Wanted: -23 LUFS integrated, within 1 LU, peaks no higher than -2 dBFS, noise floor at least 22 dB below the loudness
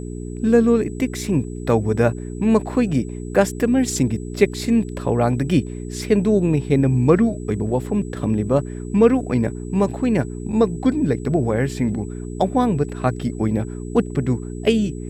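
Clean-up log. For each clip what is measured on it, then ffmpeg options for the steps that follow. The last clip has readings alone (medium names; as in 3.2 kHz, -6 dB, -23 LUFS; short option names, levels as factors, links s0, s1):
hum 60 Hz; highest harmonic 420 Hz; hum level -27 dBFS; steady tone 7.9 kHz; tone level -47 dBFS; loudness -20.0 LUFS; peak level -1.5 dBFS; loudness target -23.0 LUFS
-> -af "bandreject=f=60:t=h:w=4,bandreject=f=120:t=h:w=4,bandreject=f=180:t=h:w=4,bandreject=f=240:t=h:w=4,bandreject=f=300:t=h:w=4,bandreject=f=360:t=h:w=4,bandreject=f=420:t=h:w=4"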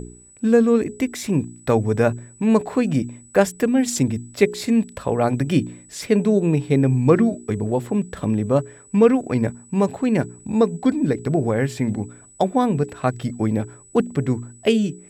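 hum not found; steady tone 7.9 kHz; tone level -47 dBFS
-> -af "bandreject=f=7900:w=30"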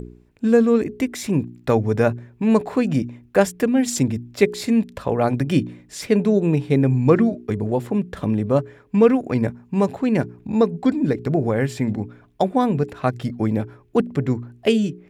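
steady tone not found; loudness -21.0 LUFS; peak level -2.5 dBFS; loudness target -23.0 LUFS
-> -af "volume=0.794"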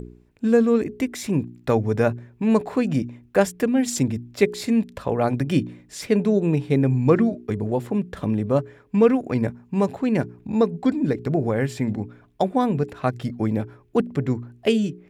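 loudness -23.0 LUFS; peak level -4.5 dBFS; noise floor -55 dBFS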